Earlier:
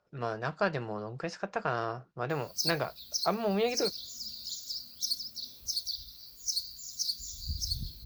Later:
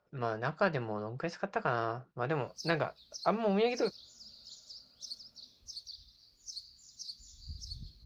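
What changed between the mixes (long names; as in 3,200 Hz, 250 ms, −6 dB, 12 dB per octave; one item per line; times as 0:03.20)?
background −8.5 dB
master: add high-frequency loss of the air 78 metres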